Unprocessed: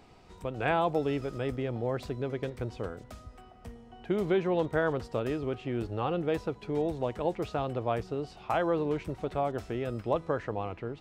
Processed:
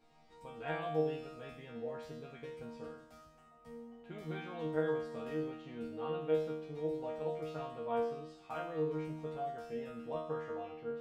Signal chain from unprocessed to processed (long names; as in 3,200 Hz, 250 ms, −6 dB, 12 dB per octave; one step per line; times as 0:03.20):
resonators tuned to a chord D#3 fifth, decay 0.76 s
level +9 dB